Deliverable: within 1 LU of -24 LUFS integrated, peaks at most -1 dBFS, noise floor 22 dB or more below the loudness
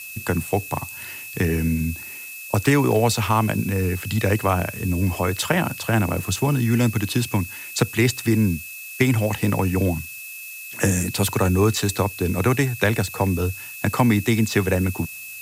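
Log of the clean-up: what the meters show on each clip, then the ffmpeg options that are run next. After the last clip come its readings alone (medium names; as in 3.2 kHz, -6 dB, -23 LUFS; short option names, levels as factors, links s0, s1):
steady tone 2.6 kHz; tone level -36 dBFS; noise floor -36 dBFS; noise floor target -44 dBFS; loudness -22.0 LUFS; peak level -3.5 dBFS; loudness target -24.0 LUFS
-> -af "bandreject=f=2600:w=30"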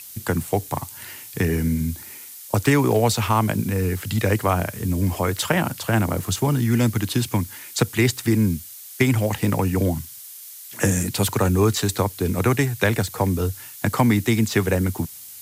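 steady tone not found; noise floor -40 dBFS; noise floor target -44 dBFS
-> -af "afftdn=nr=6:nf=-40"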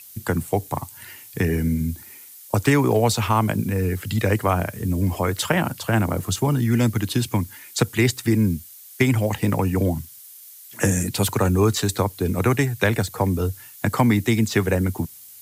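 noise floor -44 dBFS; loudness -22.0 LUFS; peak level -3.5 dBFS; loudness target -24.0 LUFS
-> -af "volume=0.794"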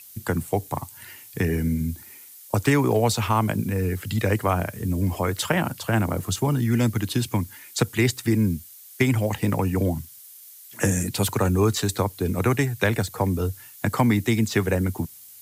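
loudness -24.0 LUFS; peak level -5.5 dBFS; noise floor -46 dBFS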